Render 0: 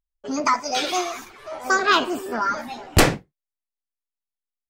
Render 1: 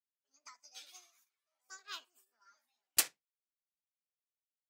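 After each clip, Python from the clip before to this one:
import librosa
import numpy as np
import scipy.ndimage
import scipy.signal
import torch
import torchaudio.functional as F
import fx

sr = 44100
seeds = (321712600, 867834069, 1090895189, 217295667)

y = fx.transient(x, sr, attack_db=-1, sustain_db=5)
y = np.diff(y, prepend=0.0)
y = fx.upward_expand(y, sr, threshold_db=-42.0, expansion=2.5)
y = F.gain(torch.from_numpy(y), -4.0).numpy()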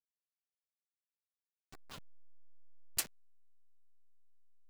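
y = fx.delta_hold(x, sr, step_db=-37.5)
y = F.gain(torch.from_numpy(y), -6.0).numpy()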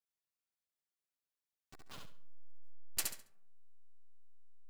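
y = fx.echo_feedback(x, sr, ms=69, feedback_pct=26, wet_db=-4)
y = fx.rev_freeverb(y, sr, rt60_s=0.83, hf_ratio=0.4, predelay_ms=30, drr_db=19.0)
y = F.gain(torch.from_numpy(y), -2.0).numpy()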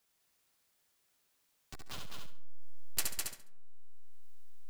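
y = x + 10.0 ** (-4.5 / 20.0) * np.pad(x, (int(204 * sr / 1000.0), 0))[:len(x)]
y = fx.band_squash(y, sr, depth_pct=40)
y = F.gain(torch.from_numpy(y), 5.0).numpy()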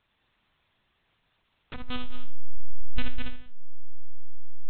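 y = fx.rev_schroeder(x, sr, rt60_s=0.46, comb_ms=30, drr_db=8.5)
y = fx.lpc_monotone(y, sr, seeds[0], pitch_hz=250.0, order=8)
y = F.gain(torch.from_numpy(y), 10.0).numpy()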